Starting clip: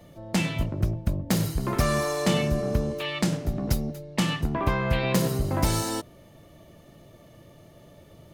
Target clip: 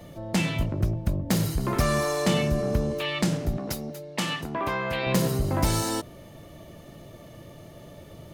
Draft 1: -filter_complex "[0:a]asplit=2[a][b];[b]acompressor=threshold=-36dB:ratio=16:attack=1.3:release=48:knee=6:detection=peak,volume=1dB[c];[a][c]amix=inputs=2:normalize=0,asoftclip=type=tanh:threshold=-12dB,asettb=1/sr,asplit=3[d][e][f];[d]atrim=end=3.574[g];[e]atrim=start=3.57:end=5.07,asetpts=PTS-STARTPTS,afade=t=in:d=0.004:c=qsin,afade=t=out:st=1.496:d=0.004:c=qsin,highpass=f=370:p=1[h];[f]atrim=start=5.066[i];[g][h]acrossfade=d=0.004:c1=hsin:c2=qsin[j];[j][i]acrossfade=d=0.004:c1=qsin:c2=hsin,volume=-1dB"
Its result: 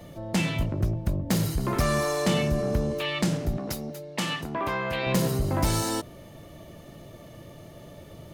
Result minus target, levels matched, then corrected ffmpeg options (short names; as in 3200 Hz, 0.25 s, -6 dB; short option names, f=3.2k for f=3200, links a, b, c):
soft clip: distortion +14 dB
-filter_complex "[0:a]asplit=2[a][b];[b]acompressor=threshold=-36dB:ratio=16:attack=1.3:release=48:knee=6:detection=peak,volume=1dB[c];[a][c]amix=inputs=2:normalize=0,asoftclip=type=tanh:threshold=-4dB,asettb=1/sr,asplit=3[d][e][f];[d]atrim=end=3.574[g];[e]atrim=start=3.57:end=5.07,asetpts=PTS-STARTPTS,afade=t=in:d=0.004:c=qsin,afade=t=out:st=1.496:d=0.004:c=qsin,highpass=f=370:p=1[h];[f]atrim=start=5.066[i];[g][h]acrossfade=d=0.004:c1=hsin:c2=qsin[j];[j][i]acrossfade=d=0.004:c1=qsin:c2=hsin,volume=-1dB"